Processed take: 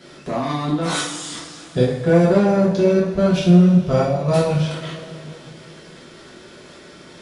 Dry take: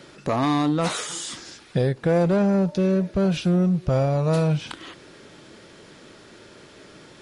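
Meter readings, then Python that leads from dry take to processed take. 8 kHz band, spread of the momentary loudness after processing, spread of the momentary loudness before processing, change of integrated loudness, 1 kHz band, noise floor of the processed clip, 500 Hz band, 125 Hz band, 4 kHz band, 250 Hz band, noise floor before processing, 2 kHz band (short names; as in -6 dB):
+3.0 dB, 18 LU, 12 LU, +5.0 dB, +3.0 dB, -43 dBFS, +5.5 dB, +4.5 dB, +4.0 dB, +5.0 dB, -48 dBFS, +5.0 dB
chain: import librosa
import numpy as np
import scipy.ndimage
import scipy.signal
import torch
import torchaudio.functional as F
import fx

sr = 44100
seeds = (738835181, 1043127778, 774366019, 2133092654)

y = fx.level_steps(x, sr, step_db=10)
y = fx.rev_double_slope(y, sr, seeds[0], early_s=0.52, late_s=3.2, knee_db=-17, drr_db=-6.5)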